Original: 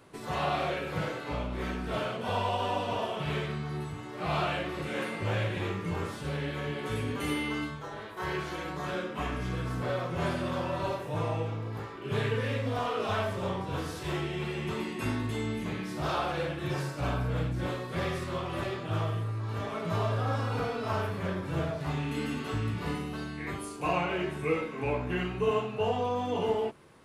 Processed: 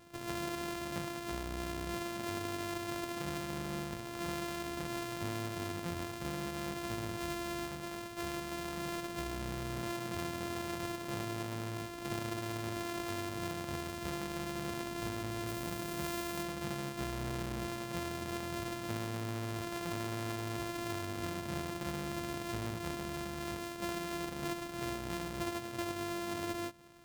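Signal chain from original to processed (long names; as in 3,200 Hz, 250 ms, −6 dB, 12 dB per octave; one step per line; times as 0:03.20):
samples sorted by size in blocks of 128 samples
downward compressor, threshold −34 dBFS, peak gain reduction 11.5 dB
0:15.47–0:16.43: high-shelf EQ 8,800 Hz +7.5 dB
level −1.5 dB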